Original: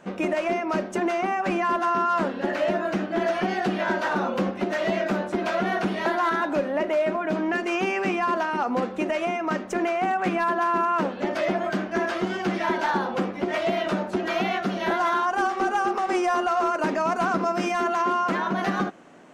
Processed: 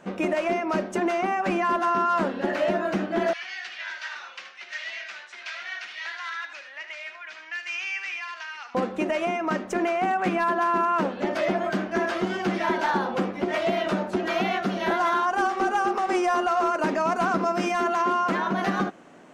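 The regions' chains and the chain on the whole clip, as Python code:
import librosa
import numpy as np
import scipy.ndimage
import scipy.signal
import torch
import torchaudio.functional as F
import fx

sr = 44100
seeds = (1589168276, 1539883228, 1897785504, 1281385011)

y = fx.chain(x, sr, fx.cheby1_bandpass(low_hz=2000.0, high_hz=5900.0, order=2),
    fx.echo_single(ms=76, db=-9.5), at=(3.33, 8.75))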